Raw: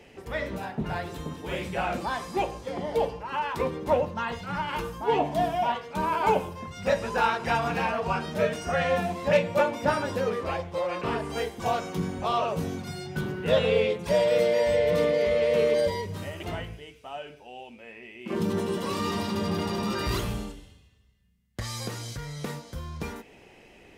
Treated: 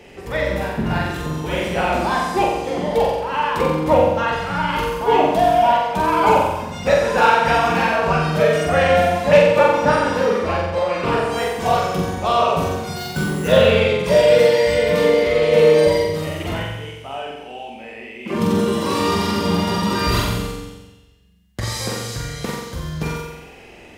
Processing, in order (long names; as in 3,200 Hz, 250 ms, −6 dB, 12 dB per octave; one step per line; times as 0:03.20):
0:09.50–0:10.96: high-shelf EQ 9,000 Hz −8 dB
0:12.96–0:13.48: sample-rate reduction 8,800 Hz, jitter 0%
flutter between parallel walls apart 7.7 metres, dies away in 1 s
level +7 dB